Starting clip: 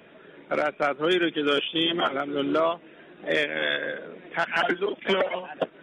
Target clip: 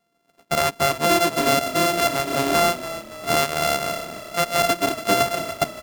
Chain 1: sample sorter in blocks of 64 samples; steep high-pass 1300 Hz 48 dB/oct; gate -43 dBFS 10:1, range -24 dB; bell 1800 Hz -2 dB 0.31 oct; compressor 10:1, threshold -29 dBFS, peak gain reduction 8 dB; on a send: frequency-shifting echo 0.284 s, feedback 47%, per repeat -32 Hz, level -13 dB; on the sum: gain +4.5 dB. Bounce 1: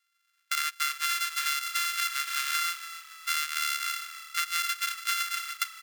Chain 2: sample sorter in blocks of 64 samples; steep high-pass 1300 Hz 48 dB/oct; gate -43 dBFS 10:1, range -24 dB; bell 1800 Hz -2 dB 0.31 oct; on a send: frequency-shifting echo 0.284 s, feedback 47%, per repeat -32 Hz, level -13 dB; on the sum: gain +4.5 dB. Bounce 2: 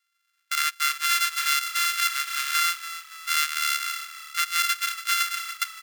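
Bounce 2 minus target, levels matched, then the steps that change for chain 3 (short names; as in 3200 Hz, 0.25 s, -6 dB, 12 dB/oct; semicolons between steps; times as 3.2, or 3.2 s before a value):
1000 Hz band -3.0 dB
remove: steep high-pass 1300 Hz 48 dB/oct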